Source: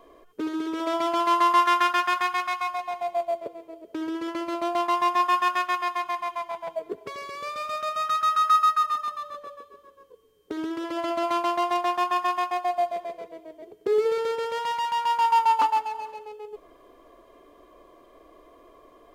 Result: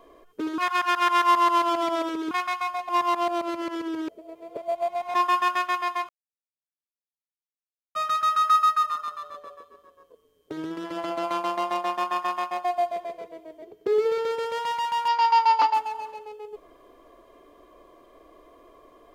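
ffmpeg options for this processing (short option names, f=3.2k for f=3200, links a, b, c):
-filter_complex "[0:a]asettb=1/sr,asplit=3[a][b][c];[a]atrim=end=8.904[d];[b]atrim=start=8.9:end=12.64,asetpts=PTS-STARTPTS,afade=t=in:d=0.004:c=qsin,afade=t=out:st=3.736:d=0.004:c=qsin,tremolo=f=160:d=0.519[e];[c]atrim=start=12.636[f];[d][e]acrossfade=d=0.004:c1=hsin:c2=qsin[g];[g][f]acrossfade=d=0.004:c1=qsin:c2=hsin,asettb=1/sr,asplit=3[h][i][j];[h]atrim=end=13.634[k];[i]atrim=start=13.63:end=14.31,asetpts=PTS-STARTPTS,afade=t=in:d=0.004:c=qsin,afade=t=out:st=0.676:d=0.004:c=qsin,equalizer=f=9.4k:w=1.4:g=-6[l];[j]atrim=start=14.306[m];[k][l]acrossfade=d=0.004:c1=hsin:c2=qsin[n];[n][m]acrossfade=d=0.004:c1=qsin:c2=hsin,asettb=1/sr,asplit=3[o][p][q];[o]atrim=end=15.084[r];[p]atrim=start=15.08:end=15.74,asetpts=PTS-STARTPTS,afade=t=in:d=0.004:c=qsin,afade=t=out:st=0.656:d=0.004:c=qsin,highpass=f=280:w=0.5412,highpass=f=280:w=1.3066,equalizer=f=700:t=q:w=4:g=5,equalizer=f=2.1k:t=q:w=4:g=5,equalizer=f=4.8k:t=q:w=4:g=10,lowpass=f=6.1k:w=0.5412,lowpass=f=6.1k:w=1.3066[s];[q]atrim=start=15.736[t];[r][s]acrossfade=d=0.004:c1=hsin:c2=qsin[u];[u][t]acrossfade=d=0.004:c1=qsin:c2=hsin,asplit=7[v][w][x][y][z][aa][ab];[v]atrim=end=0.582[ac];[w]atrim=start=0.578:end=2.312,asetpts=PTS-STARTPTS,areverse[ad];[x]atrim=start=2.308:end=2.892[ae];[y]atrim=start=2.888:end=5.142,asetpts=PTS-STARTPTS,areverse[af];[z]atrim=start=5.138:end=6.09,asetpts=PTS-STARTPTS,afade=t=out:st=0.948:d=0.004:c=hsin[ag];[aa]atrim=start=6.09:end=7.95,asetpts=PTS-STARTPTS,volume=0[ah];[ab]atrim=start=7.95,asetpts=PTS-STARTPTS,afade=t=in:d=0.004:c=hsin[ai];[ac][ad]acrossfade=d=0.004:c1=hsin:c2=hsin[aj];[aj][ae]acrossfade=d=0.004:c1=hsin:c2=hsin[ak];[ak][af]acrossfade=d=0.004:c1=hsin:c2=hsin[al];[ag][ah][ai]concat=n=3:v=0:a=1[am];[al][am]acrossfade=d=0.004:c1=hsin:c2=hsin"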